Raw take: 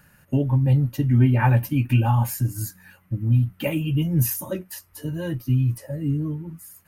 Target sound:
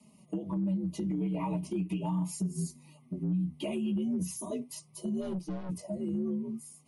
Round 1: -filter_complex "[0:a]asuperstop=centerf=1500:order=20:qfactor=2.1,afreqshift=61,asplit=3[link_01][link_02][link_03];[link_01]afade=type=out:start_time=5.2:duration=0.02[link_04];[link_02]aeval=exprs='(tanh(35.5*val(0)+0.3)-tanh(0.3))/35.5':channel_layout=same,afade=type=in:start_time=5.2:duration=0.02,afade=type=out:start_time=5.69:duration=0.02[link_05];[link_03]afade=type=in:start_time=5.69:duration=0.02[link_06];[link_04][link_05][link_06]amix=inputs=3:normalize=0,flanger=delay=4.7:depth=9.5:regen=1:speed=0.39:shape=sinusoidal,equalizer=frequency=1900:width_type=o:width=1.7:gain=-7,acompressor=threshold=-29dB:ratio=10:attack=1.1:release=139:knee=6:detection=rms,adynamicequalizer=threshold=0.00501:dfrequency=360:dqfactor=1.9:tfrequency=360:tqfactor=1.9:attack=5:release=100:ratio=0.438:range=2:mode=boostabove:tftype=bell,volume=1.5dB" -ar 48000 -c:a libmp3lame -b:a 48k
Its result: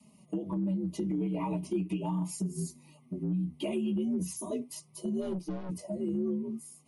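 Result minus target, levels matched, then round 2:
500 Hz band +2.5 dB
-filter_complex "[0:a]asuperstop=centerf=1500:order=20:qfactor=2.1,afreqshift=61,asplit=3[link_01][link_02][link_03];[link_01]afade=type=out:start_time=5.2:duration=0.02[link_04];[link_02]aeval=exprs='(tanh(35.5*val(0)+0.3)-tanh(0.3))/35.5':channel_layout=same,afade=type=in:start_time=5.2:duration=0.02,afade=type=out:start_time=5.69:duration=0.02[link_05];[link_03]afade=type=in:start_time=5.69:duration=0.02[link_06];[link_04][link_05][link_06]amix=inputs=3:normalize=0,flanger=delay=4.7:depth=9.5:regen=1:speed=0.39:shape=sinusoidal,equalizer=frequency=1900:width_type=o:width=1.7:gain=-7,acompressor=threshold=-29dB:ratio=10:attack=1.1:release=139:knee=6:detection=rms,adynamicequalizer=threshold=0.00501:dfrequency=130:dqfactor=1.9:tfrequency=130:tqfactor=1.9:attack=5:release=100:ratio=0.438:range=2:mode=boostabove:tftype=bell,volume=1.5dB" -ar 48000 -c:a libmp3lame -b:a 48k

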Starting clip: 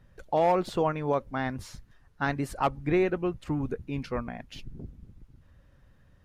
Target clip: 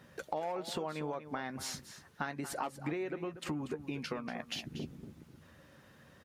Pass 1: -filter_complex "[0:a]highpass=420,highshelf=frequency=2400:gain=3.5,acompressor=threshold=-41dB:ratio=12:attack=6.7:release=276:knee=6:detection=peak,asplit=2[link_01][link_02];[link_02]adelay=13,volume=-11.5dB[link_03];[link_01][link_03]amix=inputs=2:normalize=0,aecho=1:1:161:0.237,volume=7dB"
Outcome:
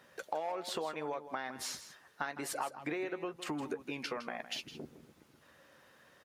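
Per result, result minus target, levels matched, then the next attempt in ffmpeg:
echo 76 ms early; 250 Hz band −2.5 dB
-filter_complex "[0:a]highpass=420,highshelf=frequency=2400:gain=3.5,acompressor=threshold=-41dB:ratio=12:attack=6.7:release=276:knee=6:detection=peak,asplit=2[link_01][link_02];[link_02]adelay=13,volume=-11.5dB[link_03];[link_01][link_03]amix=inputs=2:normalize=0,aecho=1:1:237:0.237,volume=7dB"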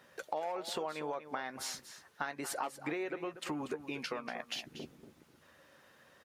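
250 Hz band −2.5 dB
-filter_complex "[0:a]highpass=190,highshelf=frequency=2400:gain=3.5,acompressor=threshold=-41dB:ratio=12:attack=6.7:release=276:knee=6:detection=peak,asplit=2[link_01][link_02];[link_02]adelay=13,volume=-11.5dB[link_03];[link_01][link_03]amix=inputs=2:normalize=0,aecho=1:1:237:0.237,volume=7dB"

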